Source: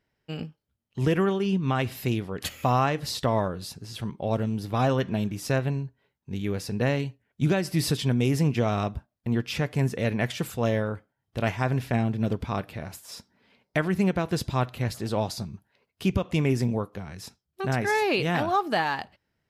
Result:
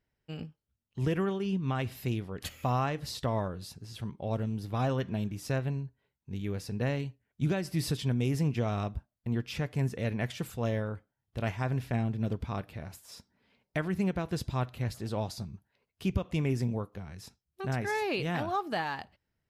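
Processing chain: bass shelf 85 Hz +10 dB; trim -7.5 dB

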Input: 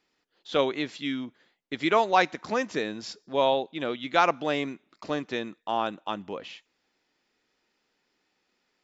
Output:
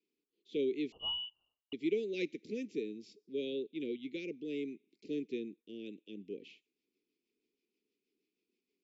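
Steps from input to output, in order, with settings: Chebyshev band-stop 430–2300 Hz, order 4; peaking EQ 2 kHz -4.5 dB 1.6 oct; rotary cabinet horn 0.75 Hz, later 6.3 Hz, at 5.66 s; three-band isolator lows -18 dB, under 220 Hz, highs -14 dB, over 2.4 kHz; 0.92–1.73 s: frequency inversion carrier 3.2 kHz; trim -1.5 dB

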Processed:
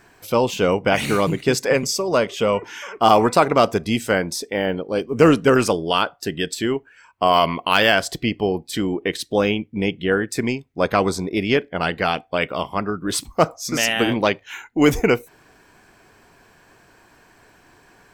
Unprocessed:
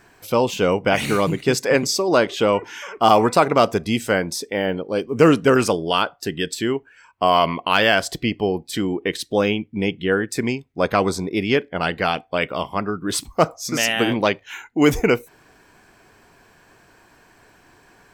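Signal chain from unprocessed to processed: 1.73–2.62 s: graphic EQ with 31 bands 315 Hz -10 dB, 800 Hz -7 dB, 1.6 kHz -6 dB, 4 kHz -8 dB; AM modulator 250 Hz, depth 10%; 7.33–7.92 s: treble shelf 6.5 kHz +7 dB; trim +1 dB

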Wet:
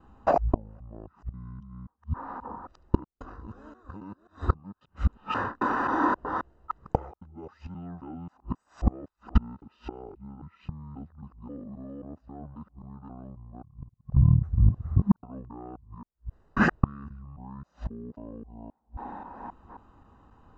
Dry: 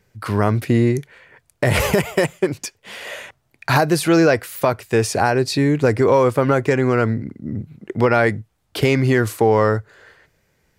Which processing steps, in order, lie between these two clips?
time reversed locally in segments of 140 ms; Savitzky-Golay filter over 25 samples; inverted gate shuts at -16 dBFS, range -35 dB; wide varispeed 0.524×; trim +8.5 dB

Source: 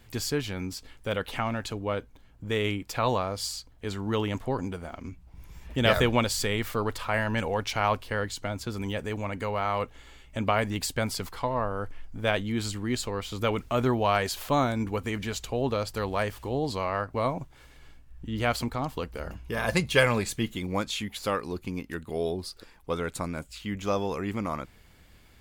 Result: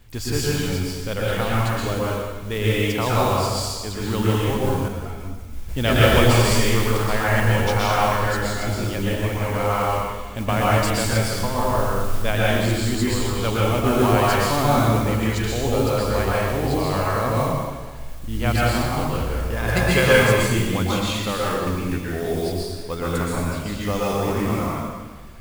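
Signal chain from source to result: bass shelf 83 Hz +9.5 dB; modulation noise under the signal 19 dB; plate-style reverb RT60 1.5 s, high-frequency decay 0.95×, pre-delay 105 ms, DRR -6.5 dB; 4.88–5.69 s: three-phase chorus

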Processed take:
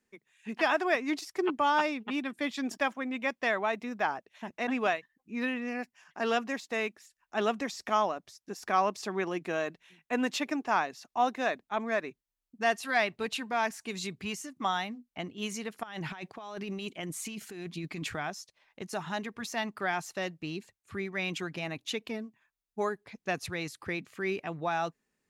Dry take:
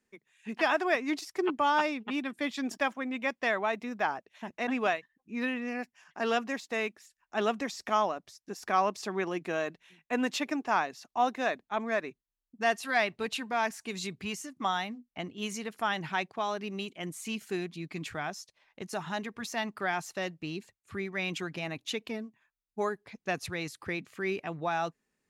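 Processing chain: 15.83–18.16 s: compressor with a negative ratio -39 dBFS, ratio -1

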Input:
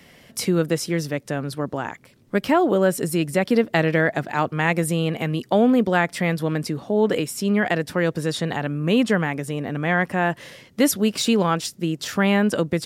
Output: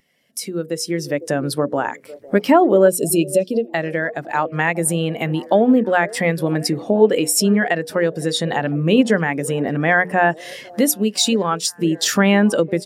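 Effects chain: compression 2.5:1, threshold -34 dBFS, peak gain reduction 14 dB; bass shelf 130 Hz -12 dB; hum notches 60/120/180/240/300/360/420/480 Hz; repeats whose band climbs or falls 505 ms, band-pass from 470 Hz, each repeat 0.7 oct, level -11 dB; time-frequency box 2.88–3.67 s, 700–2400 Hz -12 dB; treble shelf 4.6 kHz +9.5 dB; level rider gain up to 16 dB; spectral contrast expander 1.5:1

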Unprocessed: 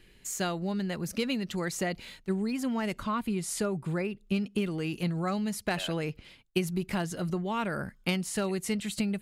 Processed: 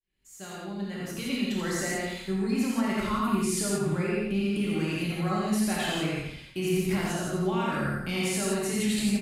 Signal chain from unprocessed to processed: fade-in on the opening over 2.42 s; band-stop 470 Hz, Q 12; on a send: feedback delay 84 ms, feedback 32%, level -6.5 dB; on the sum: peak limiter -25 dBFS, peak gain reduction 10.5 dB; gated-style reverb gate 200 ms flat, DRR -5 dB

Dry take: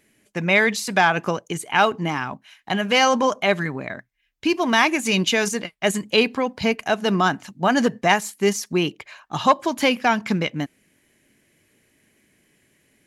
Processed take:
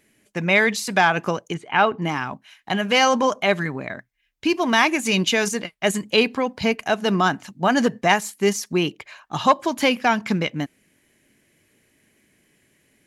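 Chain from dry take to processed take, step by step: 1.54–2.02 s: low-pass 2.9 kHz 12 dB/octave

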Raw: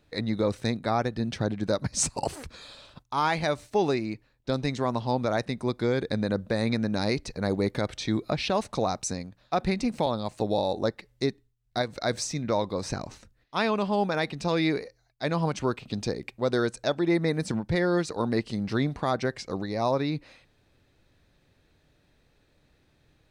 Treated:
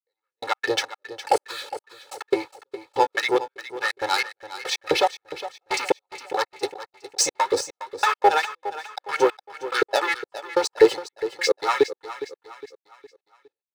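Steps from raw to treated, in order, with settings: octave divider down 1 oct, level -2 dB; waveshaping leveller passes 3; gate -39 dBFS, range -12 dB; LFO high-pass saw up 1.8 Hz 390–2000 Hz; granular stretch 0.59×, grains 176 ms; trance gate "....x.xx" 142 bpm -60 dB; comb 2.3 ms, depth 86%; on a send: feedback delay 411 ms, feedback 42%, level -13.5 dB

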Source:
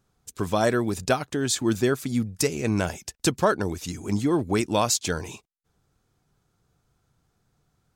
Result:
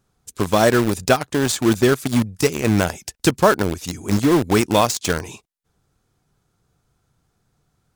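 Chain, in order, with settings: de-esser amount 45%; peaking EQ 9.8 kHz +2.5 dB 0.43 oct; in parallel at -4 dB: bit crusher 4-bit; on the sum: trim +2.5 dB

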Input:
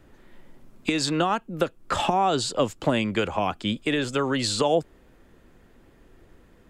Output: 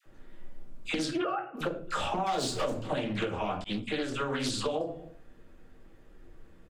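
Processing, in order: 1.06–1.55 s: formants replaced by sine waves; 2.26–2.70 s: waveshaping leveller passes 3; phase dispersion lows, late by 59 ms, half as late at 840 Hz; speakerphone echo 260 ms, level -27 dB; simulated room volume 31 m³, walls mixed, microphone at 0.54 m; compression 10:1, threshold -20 dBFS, peak gain reduction 12.5 dB; 3.64–4.12 s: expander -23 dBFS; loudspeaker Doppler distortion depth 0.32 ms; trim -7 dB

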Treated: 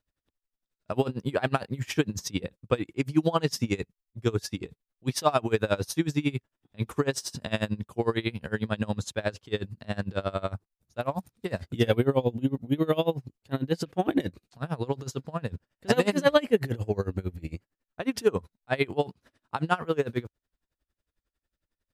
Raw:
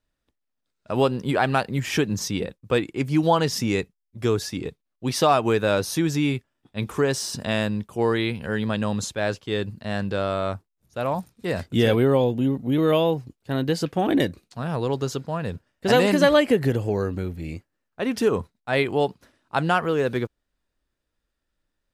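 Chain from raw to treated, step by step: peaking EQ 83 Hz +3.5 dB 1.3 oct; logarithmic tremolo 11 Hz, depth 24 dB

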